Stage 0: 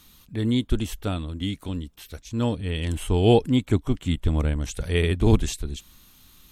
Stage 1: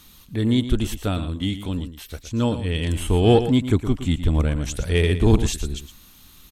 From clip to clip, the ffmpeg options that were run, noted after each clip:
-filter_complex "[0:a]asplit=2[s0][s1];[s1]asoftclip=type=tanh:threshold=0.106,volume=0.562[s2];[s0][s2]amix=inputs=2:normalize=0,aecho=1:1:115:0.266"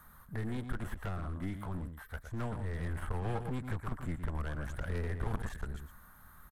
-filter_complex "[0:a]firequalizer=gain_entry='entry(170,0);entry(300,-9);entry(600,4);entry(1600,10);entry(2600,-19);entry(6000,-16);entry(9800,-1)':delay=0.05:min_phase=1,acrossover=split=330|1100|4600[s0][s1][s2][s3];[s0]acompressor=threshold=0.0562:ratio=4[s4];[s1]acompressor=threshold=0.0158:ratio=4[s5];[s2]acompressor=threshold=0.0178:ratio=4[s6];[s3]acompressor=threshold=0.00158:ratio=4[s7];[s4][s5][s6][s7]amix=inputs=4:normalize=0,aeval=exprs='clip(val(0),-1,0.0178)':c=same,volume=0.531"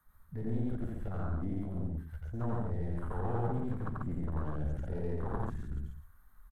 -filter_complex "[0:a]afwtdn=0.0112,acrossover=split=170[s0][s1];[s0]alimiter=level_in=2.99:limit=0.0631:level=0:latency=1,volume=0.335[s2];[s2][s1]amix=inputs=2:normalize=0,aecho=1:1:87.46|139.9:0.891|0.794"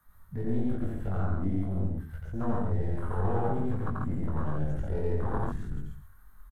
-filter_complex "[0:a]asplit=2[s0][s1];[s1]adelay=21,volume=0.75[s2];[s0][s2]amix=inputs=2:normalize=0,volume=1.5"

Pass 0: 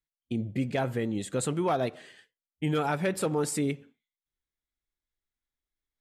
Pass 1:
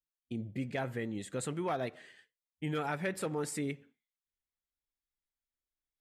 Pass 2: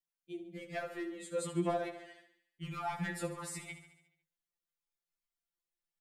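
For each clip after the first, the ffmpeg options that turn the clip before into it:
-af "adynamicequalizer=threshold=0.00355:dfrequency=1900:dqfactor=2.2:tfrequency=1900:tqfactor=2.2:attack=5:release=100:ratio=0.375:range=3:mode=boostabove:tftype=bell,volume=0.422"
-filter_complex "[0:a]asoftclip=type=hard:threshold=0.0398,asplit=2[s0][s1];[s1]aecho=0:1:71|142|213|284|355|426|497:0.251|0.148|0.0874|0.0516|0.0304|0.018|0.0106[s2];[s0][s2]amix=inputs=2:normalize=0,afftfilt=real='re*2.83*eq(mod(b,8),0)':imag='im*2.83*eq(mod(b,8),0)':win_size=2048:overlap=0.75"

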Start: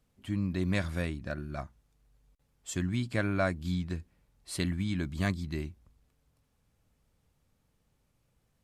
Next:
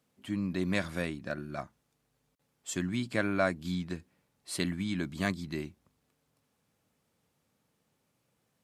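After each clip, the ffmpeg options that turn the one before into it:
-af "highpass=170,volume=1.19"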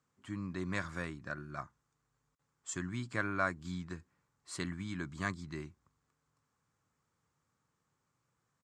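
-af "firequalizer=gain_entry='entry(140,0);entry(200,-7);entry(350,-4);entry(620,-8);entry(1100,5);entry(2600,-7);entry(3700,-7);entry(7300,1);entry(11000,-18)':delay=0.05:min_phase=1,volume=0.75"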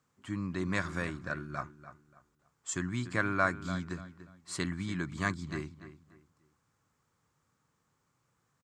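-filter_complex "[0:a]asplit=2[s0][s1];[s1]adelay=291,lowpass=f=3100:p=1,volume=0.224,asplit=2[s2][s3];[s3]adelay=291,lowpass=f=3100:p=1,volume=0.3,asplit=2[s4][s5];[s5]adelay=291,lowpass=f=3100:p=1,volume=0.3[s6];[s0][s2][s4][s6]amix=inputs=4:normalize=0,volume=1.68"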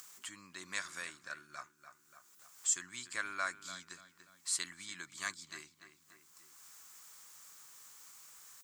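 -af "acompressor=mode=upward:threshold=0.0141:ratio=2.5,aderivative,volume=2.11"

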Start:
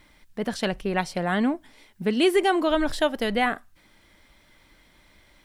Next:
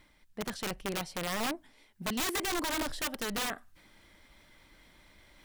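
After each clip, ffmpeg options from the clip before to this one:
-af "areverse,acompressor=mode=upward:threshold=0.00794:ratio=2.5,areverse,aeval=exprs='(mod(8.41*val(0)+1,2)-1)/8.41':c=same,volume=0.376"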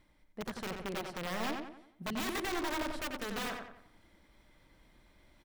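-filter_complex "[0:a]asplit=2[s0][s1];[s1]adynamicsmooth=sensitivity=7.5:basefreq=1400,volume=0.794[s2];[s0][s2]amix=inputs=2:normalize=0,asplit=2[s3][s4];[s4]adelay=90,lowpass=f=3200:p=1,volume=0.631,asplit=2[s5][s6];[s6]adelay=90,lowpass=f=3200:p=1,volume=0.44,asplit=2[s7][s8];[s8]adelay=90,lowpass=f=3200:p=1,volume=0.44,asplit=2[s9][s10];[s10]adelay=90,lowpass=f=3200:p=1,volume=0.44,asplit=2[s11][s12];[s12]adelay=90,lowpass=f=3200:p=1,volume=0.44,asplit=2[s13][s14];[s14]adelay=90,lowpass=f=3200:p=1,volume=0.44[s15];[s3][s5][s7][s9][s11][s13][s15]amix=inputs=7:normalize=0,volume=0.376"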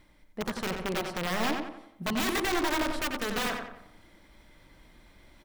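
-af "bandreject=f=66.69:t=h:w=4,bandreject=f=133.38:t=h:w=4,bandreject=f=200.07:t=h:w=4,bandreject=f=266.76:t=h:w=4,bandreject=f=333.45:t=h:w=4,bandreject=f=400.14:t=h:w=4,bandreject=f=466.83:t=h:w=4,bandreject=f=533.52:t=h:w=4,bandreject=f=600.21:t=h:w=4,bandreject=f=666.9:t=h:w=4,bandreject=f=733.59:t=h:w=4,bandreject=f=800.28:t=h:w=4,bandreject=f=866.97:t=h:w=4,bandreject=f=933.66:t=h:w=4,bandreject=f=1000.35:t=h:w=4,bandreject=f=1067.04:t=h:w=4,bandreject=f=1133.73:t=h:w=4,bandreject=f=1200.42:t=h:w=4,bandreject=f=1267.11:t=h:w=4,bandreject=f=1333.8:t=h:w=4,volume=2.37"

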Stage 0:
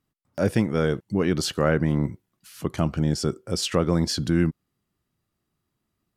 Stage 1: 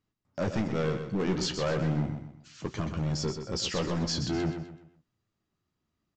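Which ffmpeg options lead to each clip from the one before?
-af "aresample=16000,asoftclip=type=hard:threshold=0.0891,aresample=44100,flanger=delay=9.4:depth=6.9:regen=-41:speed=0.38:shape=sinusoidal,aecho=1:1:126|252|378|504:0.398|0.143|0.0516|0.0186"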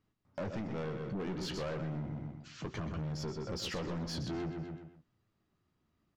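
-af "aemphasis=mode=reproduction:type=50fm,acompressor=threshold=0.0178:ratio=10,asoftclip=type=tanh:threshold=0.015,volume=1.5"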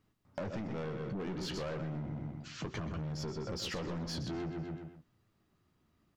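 -af "acompressor=threshold=0.00891:ratio=6,volume=1.68"

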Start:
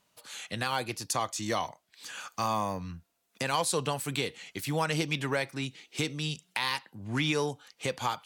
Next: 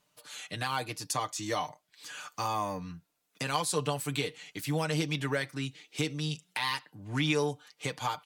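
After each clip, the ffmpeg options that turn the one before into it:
-af "aecho=1:1:6.7:0.62,volume=0.708"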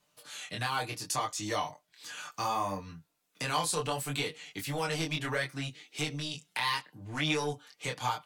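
-filter_complex "[0:a]acrossover=split=530|970[s0][s1][s2];[s0]asoftclip=type=tanh:threshold=0.0211[s3];[s3][s1][s2]amix=inputs=3:normalize=0,flanger=delay=19.5:depth=5.6:speed=0.68,volume=1.5"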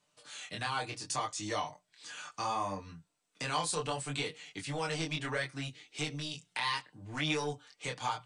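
-af "bandreject=f=60:t=h:w=6,bandreject=f=120:t=h:w=6,bandreject=f=180:t=h:w=6,volume=0.75" -ar 32000 -c:a mp2 -b:a 192k

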